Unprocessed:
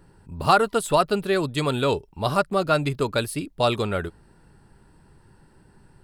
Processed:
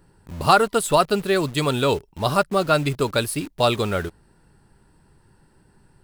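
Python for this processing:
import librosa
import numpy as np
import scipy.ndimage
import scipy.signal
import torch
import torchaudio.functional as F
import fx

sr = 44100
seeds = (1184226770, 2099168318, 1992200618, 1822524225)

p1 = fx.high_shelf(x, sr, hz=4800.0, db=4.0)
p2 = fx.quant_dither(p1, sr, seeds[0], bits=6, dither='none')
p3 = p1 + F.gain(torch.from_numpy(p2), -3.5).numpy()
y = F.gain(torch.from_numpy(p3), -2.5).numpy()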